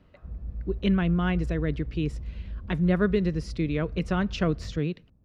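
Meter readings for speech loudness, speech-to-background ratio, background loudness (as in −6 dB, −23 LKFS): −27.5 LKFS, 11.0 dB, −38.5 LKFS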